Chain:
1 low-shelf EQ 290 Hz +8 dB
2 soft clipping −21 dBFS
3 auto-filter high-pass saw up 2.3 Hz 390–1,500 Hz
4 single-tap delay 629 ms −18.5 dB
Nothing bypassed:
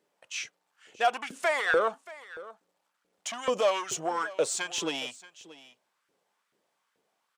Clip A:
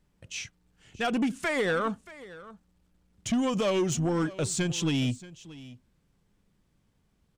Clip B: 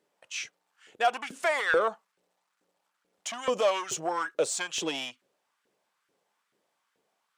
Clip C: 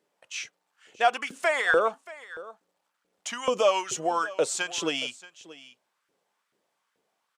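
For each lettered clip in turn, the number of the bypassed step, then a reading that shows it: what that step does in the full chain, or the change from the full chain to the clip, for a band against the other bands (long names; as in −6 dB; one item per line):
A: 3, 125 Hz band +23.5 dB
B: 4, change in momentary loudness spread −6 LU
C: 2, distortion level −13 dB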